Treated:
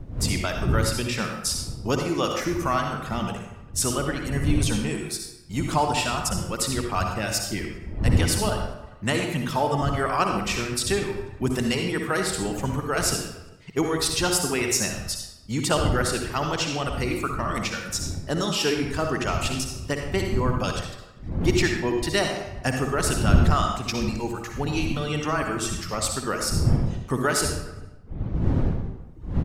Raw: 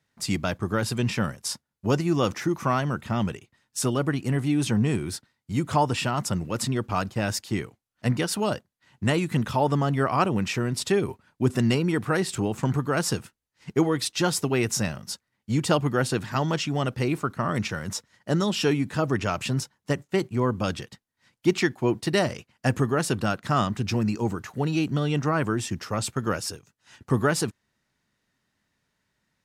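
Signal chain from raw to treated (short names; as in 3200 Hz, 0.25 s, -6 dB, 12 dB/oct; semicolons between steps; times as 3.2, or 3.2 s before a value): wind noise 97 Hz -23 dBFS; tilt +1.5 dB/oct; outdoor echo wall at 68 m, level -20 dB; reverb removal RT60 1.1 s; on a send at -2.5 dB: reverb RT60 0.90 s, pre-delay 52 ms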